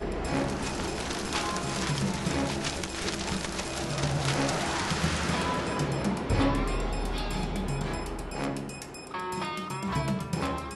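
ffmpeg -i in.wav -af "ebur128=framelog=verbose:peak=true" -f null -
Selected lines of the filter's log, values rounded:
Integrated loudness:
  I:         -30.4 LUFS
  Threshold: -40.4 LUFS
Loudness range:
  LRA:         4.6 LU
  Threshold: -50.1 LUFS
  LRA low:   -33.0 LUFS
  LRA high:  -28.5 LUFS
True peak:
  Peak:      -13.8 dBFS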